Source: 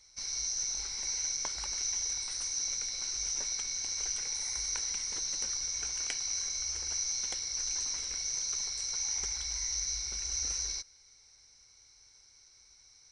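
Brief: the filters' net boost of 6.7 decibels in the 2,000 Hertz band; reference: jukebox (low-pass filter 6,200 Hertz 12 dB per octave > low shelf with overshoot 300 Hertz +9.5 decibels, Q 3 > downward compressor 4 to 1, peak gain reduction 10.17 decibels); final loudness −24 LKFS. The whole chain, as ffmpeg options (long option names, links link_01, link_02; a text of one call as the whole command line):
ffmpeg -i in.wav -af "lowpass=6200,lowshelf=frequency=300:width_type=q:width=3:gain=9.5,equalizer=frequency=2000:width_type=o:gain=8,acompressor=threshold=-39dB:ratio=4,volume=15dB" out.wav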